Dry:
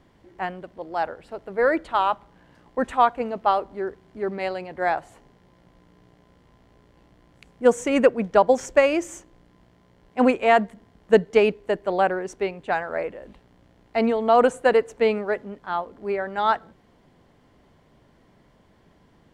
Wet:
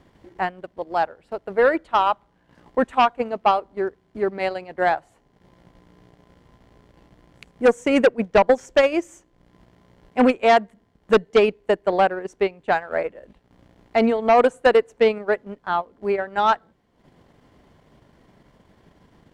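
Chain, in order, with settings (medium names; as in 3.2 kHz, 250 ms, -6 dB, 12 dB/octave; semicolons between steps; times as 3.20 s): transient shaper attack +3 dB, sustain -11 dB; Chebyshev shaper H 5 -8 dB, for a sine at 0 dBFS; trim -6.5 dB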